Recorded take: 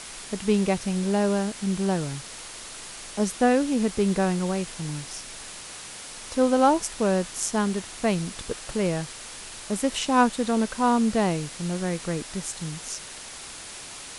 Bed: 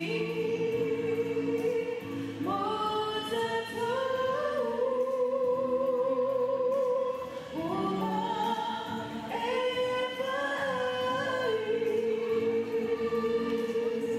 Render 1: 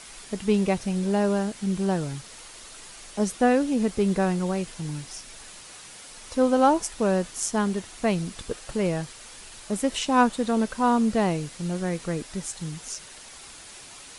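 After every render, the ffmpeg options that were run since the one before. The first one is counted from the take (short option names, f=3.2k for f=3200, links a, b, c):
-af "afftdn=nr=6:nf=-40"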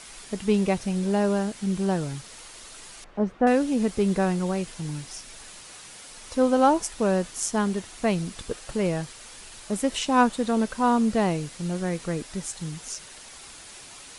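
-filter_complex "[0:a]asettb=1/sr,asplit=3[a][b][c];[a]atrim=end=3.044[d];[b]atrim=start=3.04:end=3.47,asetpts=PTS-STARTPTS,afade=t=in:d=0.004:c=qsin,afade=t=out:st=0.426:d=0.004:c=qsin,lowpass=1.5k[e];[c]atrim=start=3.466[f];[d][e]acrossfade=d=0.004:c1=hsin:c2=qsin[g];[g][f]acrossfade=d=0.004:c1=qsin:c2=hsin"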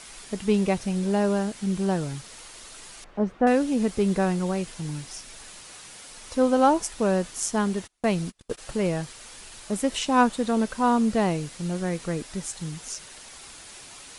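-filter_complex "[0:a]asplit=3[a][b][c];[a]afade=t=out:st=7.86:d=0.02[d];[b]agate=range=-33dB:threshold=-35dB:ratio=16:release=100:detection=peak,afade=t=in:st=7.86:d=0.02,afade=t=out:st=8.57:d=0.02[e];[c]afade=t=in:st=8.57:d=0.02[f];[d][e][f]amix=inputs=3:normalize=0"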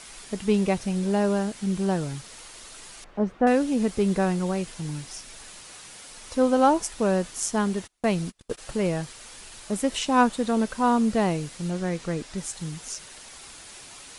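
-filter_complex "[0:a]asettb=1/sr,asplit=3[a][b][c];[a]atrim=end=11.704[d];[b]atrim=start=11.7:end=12.38,asetpts=PTS-STARTPTS,afade=t=in:d=0.004:c=qsin,afade=t=out:st=0.676:d=0.004:c=qsin,lowpass=8.2k[e];[c]atrim=start=12.376[f];[d][e]acrossfade=d=0.004:c1=hsin:c2=qsin[g];[g][f]acrossfade=d=0.004:c1=qsin:c2=hsin"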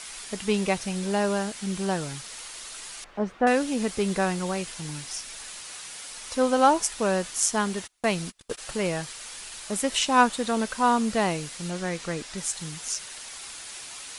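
-af "tiltshelf=f=670:g=-5"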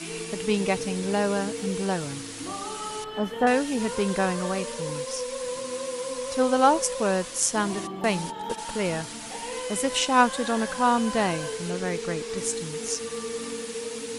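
-filter_complex "[1:a]volume=-4.5dB[a];[0:a][a]amix=inputs=2:normalize=0"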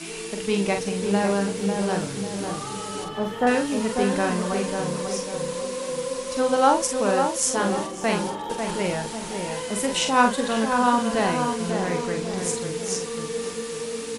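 -filter_complex "[0:a]asplit=2[a][b];[b]adelay=45,volume=-5.5dB[c];[a][c]amix=inputs=2:normalize=0,asplit=2[d][e];[e]adelay=546,lowpass=f=1.6k:p=1,volume=-5dB,asplit=2[f][g];[g]adelay=546,lowpass=f=1.6k:p=1,volume=0.46,asplit=2[h][i];[i]adelay=546,lowpass=f=1.6k:p=1,volume=0.46,asplit=2[j][k];[k]adelay=546,lowpass=f=1.6k:p=1,volume=0.46,asplit=2[l][m];[m]adelay=546,lowpass=f=1.6k:p=1,volume=0.46,asplit=2[n][o];[o]adelay=546,lowpass=f=1.6k:p=1,volume=0.46[p];[f][h][j][l][n][p]amix=inputs=6:normalize=0[q];[d][q]amix=inputs=2:normalize=0"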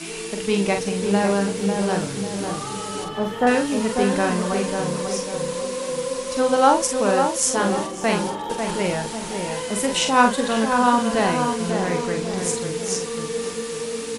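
-af "volume=2.5dB"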